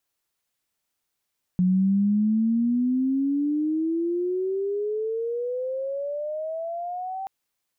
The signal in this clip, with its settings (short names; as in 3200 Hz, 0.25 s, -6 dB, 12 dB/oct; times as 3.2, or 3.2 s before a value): chirp logarithmic 180 Hz -> 780 Hz -17 dBFS -> -29 dBFS 5.68 s